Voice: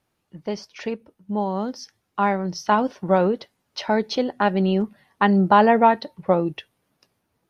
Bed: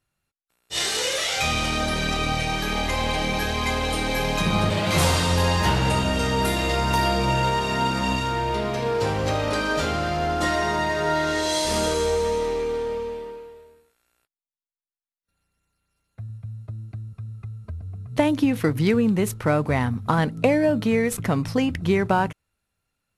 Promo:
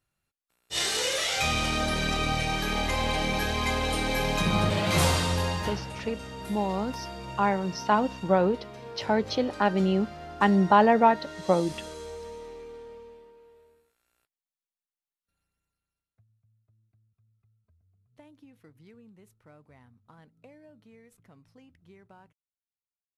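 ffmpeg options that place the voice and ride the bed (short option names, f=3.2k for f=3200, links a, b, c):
-filter_complex "[0:a]adelay=5200,volume=-4dB[a];[1:a]volume=10.5dB,afade=t=out:st=5.05:d=0.82:silence=0.188365,afade=t=in:st=13.34:d=0.87:silence=0.211349,afade=t=out:st=15.09:d=1.15:silence=0.0334965[b];[a][b]amix=inputs=2:normalize=0"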